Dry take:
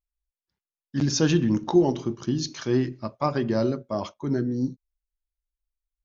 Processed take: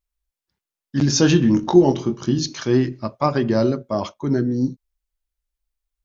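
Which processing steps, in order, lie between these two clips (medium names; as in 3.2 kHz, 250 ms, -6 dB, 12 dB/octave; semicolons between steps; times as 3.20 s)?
1.07–2.39 s: doubling 22 ms -8 dB; trim +5.5 dB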